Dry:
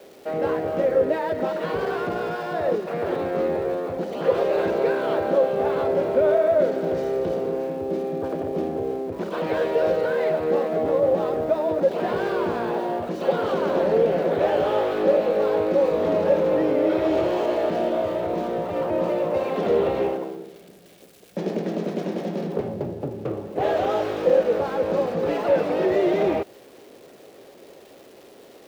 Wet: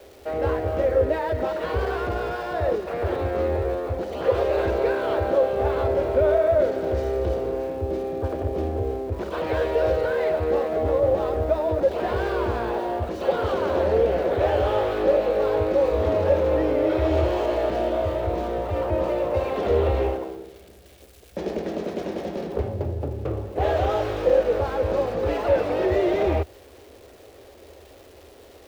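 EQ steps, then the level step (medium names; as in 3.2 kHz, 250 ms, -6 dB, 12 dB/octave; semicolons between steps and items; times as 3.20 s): resonant low shelf 110 Hz +13.5 dB, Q 3; 0.0 dB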